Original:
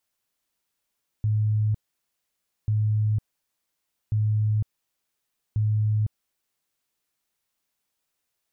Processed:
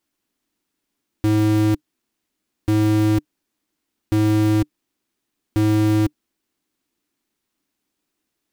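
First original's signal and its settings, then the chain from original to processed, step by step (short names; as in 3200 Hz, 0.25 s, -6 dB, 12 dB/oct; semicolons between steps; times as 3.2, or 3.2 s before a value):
tone bursts 107 Hz, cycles 54, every 1.44 s, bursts 4, -19.5 dBFS
half-waves squared off; EQ curve 140 Hz 0 dB, 300 Hz +13 dB, 510 Hz -2 dB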